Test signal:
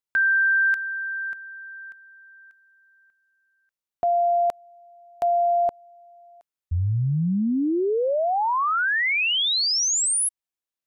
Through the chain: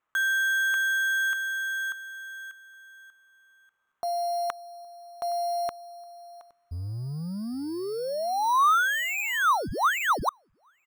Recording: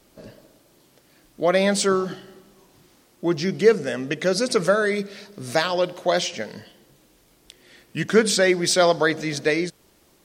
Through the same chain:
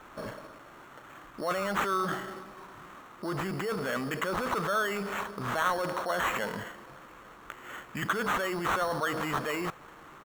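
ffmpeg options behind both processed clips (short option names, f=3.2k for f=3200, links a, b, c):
-filter_complex "[0:a]areverse,acompressor=threshold=-33dB:ratio=20:attack=1.1:release=23:knee=6:detection=peak,areverse,asplit=2[a][b];[b]adelay=816.3,volume=-26dB,highshelf=f=4k:g=-18.4[c];[a][c]amix=inputs=2:normalize=0,acrusher=samples=9:mix=1:aa=0.000001,equalizer=f=1.2k:w=1.3:g=15,volume=1.5dB"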